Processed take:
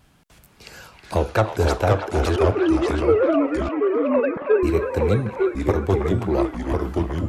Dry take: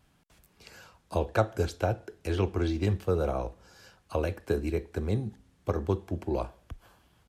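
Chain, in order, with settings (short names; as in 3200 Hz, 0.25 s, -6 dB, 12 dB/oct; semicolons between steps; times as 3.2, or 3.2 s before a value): 2.36–4.63 sine-wave speech; soft clip -18.5 dBFS, distortion -17 dB; band-limited delay 0.319 s, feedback 52%, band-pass 1500 Hz, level -4.5 dB; echoes that change speed 0.355 s, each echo -2 st, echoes 2; gain +9 dB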